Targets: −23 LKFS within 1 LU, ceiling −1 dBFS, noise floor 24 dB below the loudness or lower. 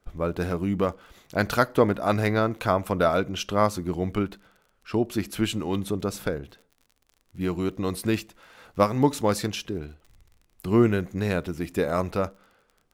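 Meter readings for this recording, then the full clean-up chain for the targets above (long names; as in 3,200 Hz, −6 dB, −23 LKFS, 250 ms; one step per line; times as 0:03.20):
crackle rate 38 per second; integrated loudness −26.0 LKFS; sample peak −5.0 dBFS; target loudness −23.0 LKFS
→ click removal
level +3 dB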